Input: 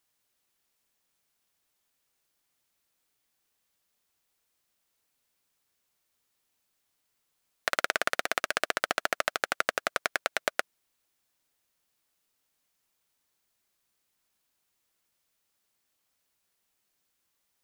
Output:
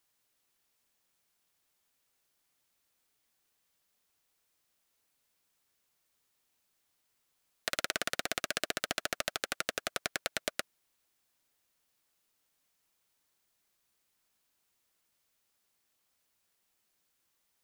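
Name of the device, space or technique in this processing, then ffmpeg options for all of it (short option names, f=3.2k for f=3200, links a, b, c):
one-band saturation: -filter_complex "[0:a]acrossover=split=370|2400[a][b][c];[b]asoftclip=type=tanh:threshold=-30dB[d];[a][d][c]amix=inputs=3:normalize=0"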